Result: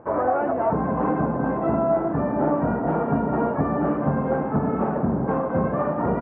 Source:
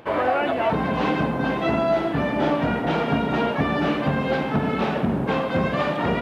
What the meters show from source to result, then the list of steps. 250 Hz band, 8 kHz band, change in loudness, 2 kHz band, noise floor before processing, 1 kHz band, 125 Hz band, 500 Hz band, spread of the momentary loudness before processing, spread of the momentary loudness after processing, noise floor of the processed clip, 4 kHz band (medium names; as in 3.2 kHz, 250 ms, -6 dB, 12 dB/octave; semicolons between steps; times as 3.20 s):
0.0 dB, no reading, -0.5 dB, -9.0 dB, -27 dBFS, -0.5 dB, 0.0 dB, 0.0 dB, 2 LU, 2 LU, -27 dBFS, under -30 dB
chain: low-pass 1.3 kHz 24 dB/octave; delay 908 ms -15.5 dB